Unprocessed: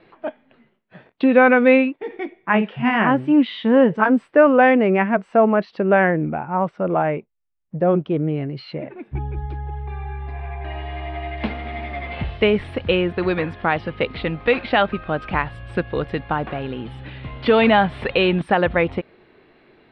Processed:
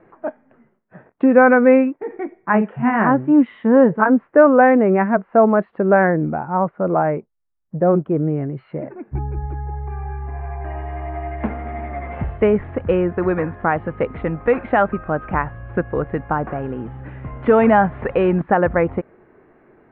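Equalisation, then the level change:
low-pass filter 1,700 Hz 24 dB per octave
+2.0 dB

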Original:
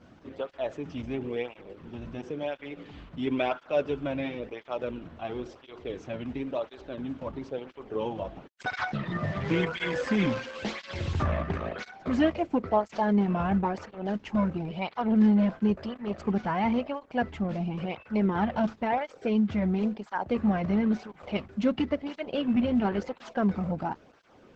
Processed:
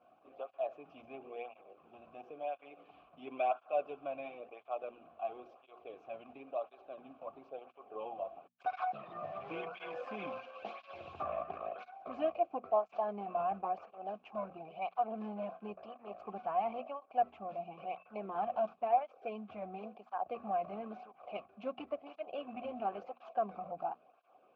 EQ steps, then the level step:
formant filter a
high-shelf EQ 4,600 Hz −6.5 dB
mains-hum notches 60/120/180/240 Hz
+2.0 dB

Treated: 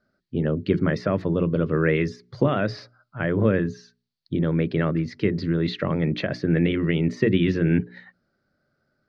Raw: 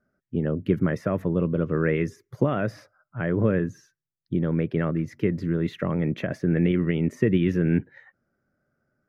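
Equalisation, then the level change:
low-pass with resonance 4,400 Hz, resonance Q 5.6
mains-hum notches 60/120/180/240 Hz
mains-hum notches 60/120/180/240/300/360/420 Hz
+2.5 dB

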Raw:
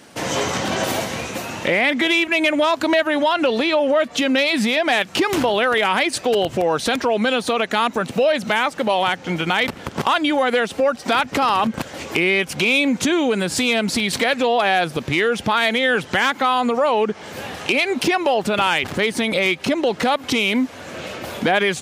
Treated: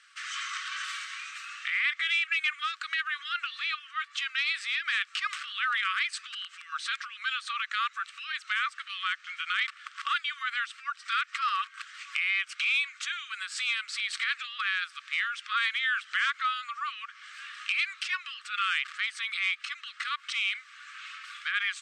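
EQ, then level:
linear-phase brick-wall high-pass 1,100 Hz
high-frequency loss of the air 130 metres
parametric band 8,200 Hz +11 dB 0.22 octaves
−6.5 dB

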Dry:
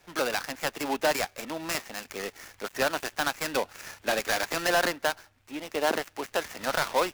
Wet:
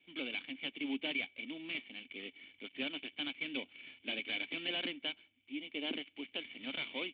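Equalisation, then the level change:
formant resonators in series i
spectral tilt +4.5 dB per octave
+6.0 dB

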